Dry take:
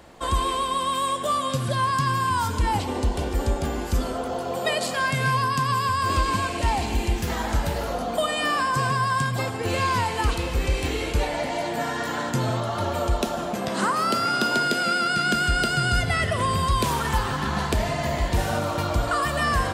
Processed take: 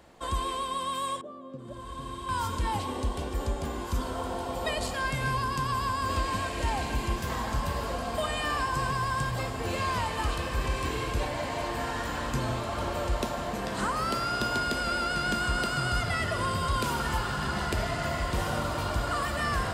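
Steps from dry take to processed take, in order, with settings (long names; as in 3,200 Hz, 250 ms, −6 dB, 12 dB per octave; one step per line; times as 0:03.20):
0:01.21–0:02.29: resonant band-pass 330 Hz, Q 2.1
0:07.43–0:08.30: hard clipping −17 dBFS, distortion −35 dB
feedback delay with all-pass diffusion 1,857 ms, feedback 66%, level −7 dB
level −7 dB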